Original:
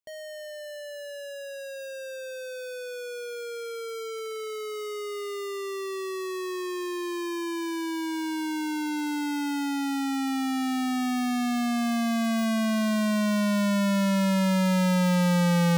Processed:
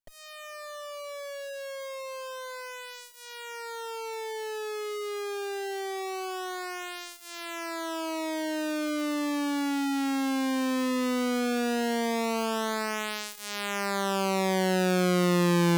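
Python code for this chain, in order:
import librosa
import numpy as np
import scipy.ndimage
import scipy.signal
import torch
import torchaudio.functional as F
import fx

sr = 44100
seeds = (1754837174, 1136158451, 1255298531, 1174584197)

y = fx.lower_of_two(x, sr, delay_ms=7.2)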